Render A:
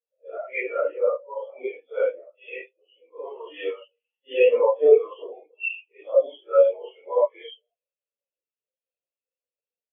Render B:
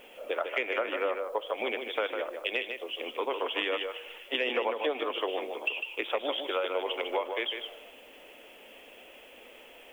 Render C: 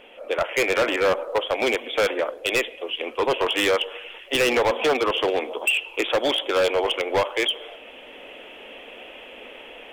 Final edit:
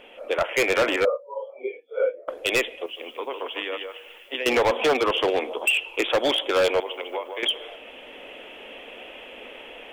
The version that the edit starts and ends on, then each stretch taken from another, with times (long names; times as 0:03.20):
C
0:01.05–0:02.28: punch in from A
0:02.86–0:04.46: punch in from B
0:06.80–0:07.43: punch in from B